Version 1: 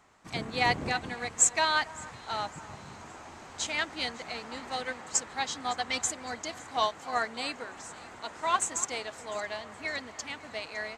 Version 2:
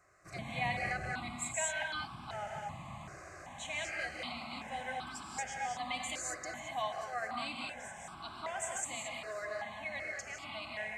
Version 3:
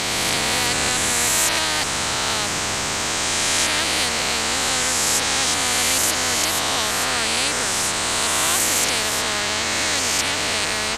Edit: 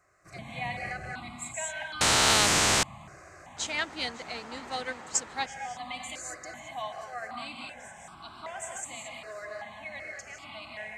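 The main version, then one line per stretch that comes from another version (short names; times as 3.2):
2
2.01–2.83 from 3
3.57–5.46 from 1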